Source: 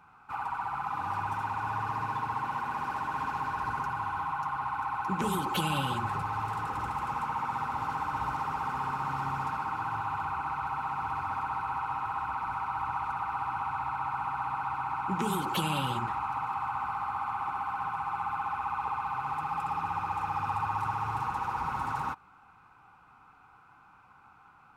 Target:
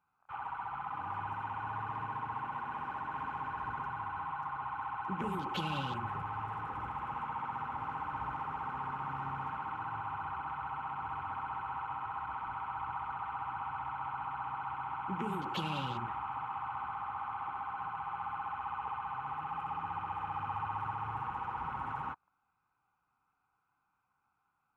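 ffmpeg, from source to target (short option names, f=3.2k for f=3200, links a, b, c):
-af "afwtdn=0.00708,volume=-6dB"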